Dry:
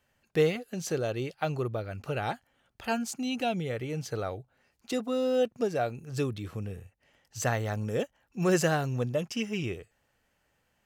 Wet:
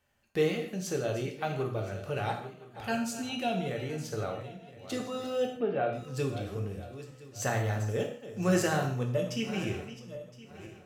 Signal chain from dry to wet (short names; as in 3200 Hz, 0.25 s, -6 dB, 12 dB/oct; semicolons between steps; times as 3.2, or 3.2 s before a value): regenerating reverse delay 0.508 s, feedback 50%, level -13 dB; 5.46–5.93 steep low-pass 3300 Hz 36 dB/oct; non-linear reverb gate 0.2 s falling, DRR 1.5 dB; gain -3.5 dB